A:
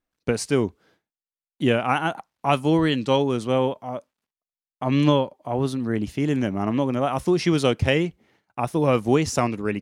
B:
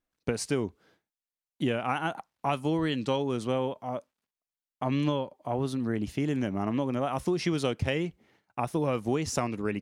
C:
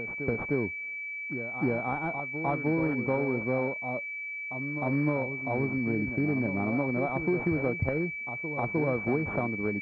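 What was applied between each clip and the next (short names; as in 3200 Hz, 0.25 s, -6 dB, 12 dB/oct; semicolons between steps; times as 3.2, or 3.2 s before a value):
compressor 3:1, threshold -23 dBFS, peak gain reduction 8 dB; gain -2.5 dB
reverse echo 0.307 s -9 dB; pulse-width modulation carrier 2300 Hz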